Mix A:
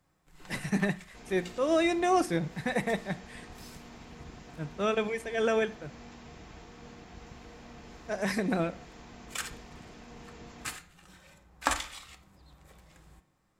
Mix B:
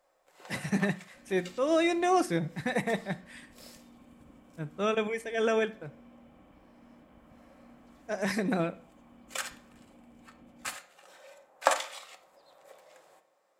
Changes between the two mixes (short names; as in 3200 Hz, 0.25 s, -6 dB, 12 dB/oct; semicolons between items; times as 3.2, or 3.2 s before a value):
first sound: add resonant high-pass 560 Hz, resonance Q 4; second sound: add vocal tract filter i